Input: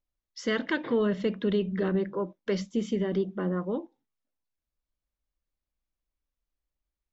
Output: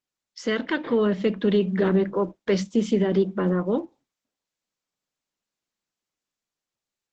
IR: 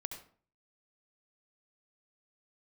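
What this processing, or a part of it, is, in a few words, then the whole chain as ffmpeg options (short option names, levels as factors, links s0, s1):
video call: -af "highpass=f=140:w=0.5412,highpass=f=140:w=1.3066,dynaudnorm=f=280:g=9:m=1.58,volume=1.41" -ar 48000 -c:a libopus -b:a 12k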